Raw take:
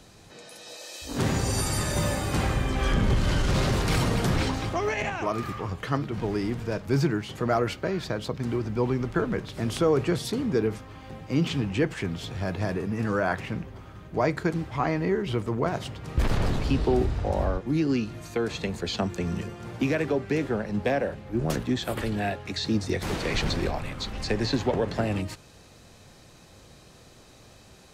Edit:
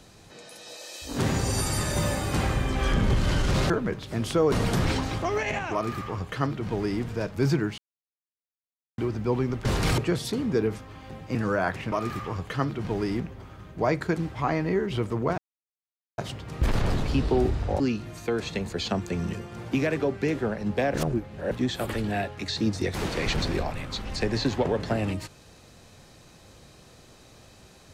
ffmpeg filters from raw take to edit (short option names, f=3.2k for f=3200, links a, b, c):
-filter_complex "[0:a]asplit=14[a][b][c][d][e][f][g][h][i][j][k][l][m][n];[a]atrim=end=3.702[o];[b]atrim=start=9.158:end=9.982[p];[c]atrim=start=4.028:end=7.29,asetpts=PTS-STARTPTS,afade=t=out:st=3.258:d=0.004:c=hsin[q];[d]atrim=start=7.29:end=8.49,asetpts=PTS-STARTPTS,volume=0[r];[e]atrim=start=8.49:end=9.162,asetpts=PTS-STARTPTS,afade=t=in:d=0.004:c=hsin[s];[f]atrim=start=3.698:end=4.032[t];[g]atrim=start=9.978:end=11.352[u];[h]atrim=start=12.988:end=13.562[v];[i]atrim=start=5.248:end=6.532[w];[j]atrim=start=13.558:end=15.74,asetpts=PTS-STARTPTS,afade=t=out:st=2.178:d=0.004:c=hsin,apad=pad_dur=0.8[x];[k]atrim=start=15.74:end=17.362,asetpts=PTS-STARTPTS,afade=t=in:d=0.004:c=hsin[y];[l]atrim=start=17.878:end=21.022[z];[m]atrim=start=21.018:end=21.592,asetpts=PTS-STARTPTS,areverse[aa];[n]atrim=start=21.588[ab];[o][p]acrossfade=d=0.004:c1=hsin:c2=hsin[ac];[q][r][s]concat=n=3:v=0:a=1[ad];[ac][ad]acrossfade=d=0.004:c1=hsin:c2=hsin[ae];[ae][t]acrossfade=d=0.004:c1=hsin:c2=hsin[af];[af][u]acrossfade=d=0.004:c1=hsin:c2=hsin[ag];[ag][v]acrossfade=d=0.004:c1=hsin:c2=hsin[ah];[ah][w]acrossfade=d=0.004:c1=hsin:c2=hsin[ai];[x][y]concat=n=2:v=0:a=1[aj];[ai][aj]acrossfade=d=0.004:c1=hsin:c2=hsin[ak];[ak][z]acrossfade=d=0.004:c1=hsin:c2=hsin[al];[al][aa]acrossfade=d=0.004:c1=hsin:c2=hsin[am];[am][ab]acrossfade=d=0.004:c1=hsin:c2=hsin"